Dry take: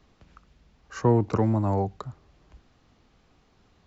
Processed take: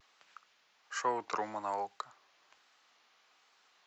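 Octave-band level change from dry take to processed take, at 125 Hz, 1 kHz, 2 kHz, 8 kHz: -36.5 dB, -3.0 dB, +1.0 dB, no reading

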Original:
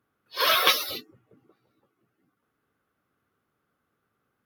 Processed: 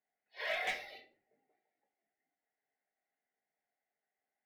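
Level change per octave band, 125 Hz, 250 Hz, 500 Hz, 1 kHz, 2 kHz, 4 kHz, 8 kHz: under -15 dB, -20.0 dB, -12.0 dB, -17.5 dB, -10.5 dB, -21.5 dB, -23.0 dB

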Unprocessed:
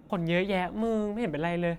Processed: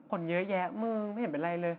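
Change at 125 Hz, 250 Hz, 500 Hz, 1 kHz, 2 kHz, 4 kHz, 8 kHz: -8.0 dB, -5.0 dB, -3.5 dB, -2.0 dB, -5.0 dB, -11.5 dB, no reading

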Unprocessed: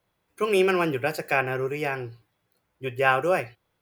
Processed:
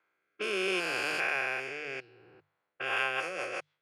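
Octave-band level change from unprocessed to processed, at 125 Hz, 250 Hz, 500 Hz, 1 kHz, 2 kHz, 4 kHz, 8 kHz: -20.0 dB, -13.0 dB, -12.0 dB, -10.5 dB, -3.5 dB, +0.5 dB, -1.5 dB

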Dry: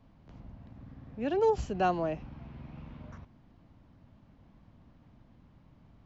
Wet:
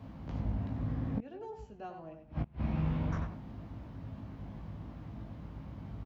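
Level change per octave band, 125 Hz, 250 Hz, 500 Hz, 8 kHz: +8.5 dB, +1.0 dB, -14.5 dB, no reading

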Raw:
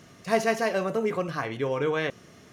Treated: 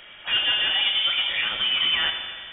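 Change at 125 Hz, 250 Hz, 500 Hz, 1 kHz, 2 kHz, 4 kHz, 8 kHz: under -10 dB, -16.5 dB, -19.0 dB, -4.5 dB, +7.5 dB, +23.5 dB, under -40 dB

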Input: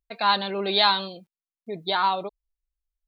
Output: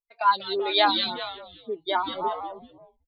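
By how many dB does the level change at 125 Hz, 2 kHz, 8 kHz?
-11.0 dB, -2.0 dB, no reading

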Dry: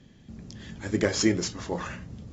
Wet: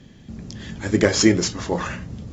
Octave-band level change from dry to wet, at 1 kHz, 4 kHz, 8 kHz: +7.5 dB, +7.5 dB, no reading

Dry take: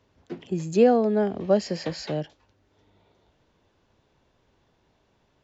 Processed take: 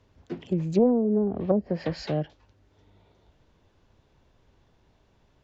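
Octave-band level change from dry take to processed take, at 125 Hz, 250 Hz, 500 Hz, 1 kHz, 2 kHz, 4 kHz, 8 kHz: +2.5 dB, +1.0 dB, -3.5 dB, -7.5 dB, -6.5 dB, -6.0 dB, no reading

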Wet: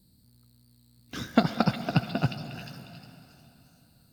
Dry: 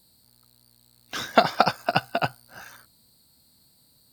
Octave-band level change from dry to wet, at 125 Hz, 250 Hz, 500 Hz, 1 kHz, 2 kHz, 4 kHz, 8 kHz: +7.5 dB, +6.0 dB, -7.0 dB, -9.5 dB, -7.5 dB, -6.5 dB, -7.0 dB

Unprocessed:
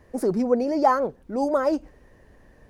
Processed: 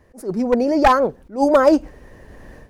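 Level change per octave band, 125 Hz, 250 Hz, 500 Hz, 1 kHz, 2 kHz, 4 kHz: +4.0 dB, +6.0 dB, +6.0 dB, +6.0 dB, +10.0 dB, +11.0 dB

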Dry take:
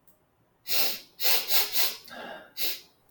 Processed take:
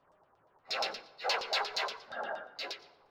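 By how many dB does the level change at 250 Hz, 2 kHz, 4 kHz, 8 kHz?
-6.5 dB, -2.5 dB, -7.5 dB, -16.5 dB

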